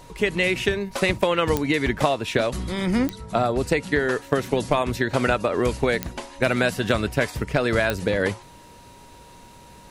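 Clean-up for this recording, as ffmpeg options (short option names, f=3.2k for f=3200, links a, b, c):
-af "adeclick=t=4,bandreject=f=950:w=30"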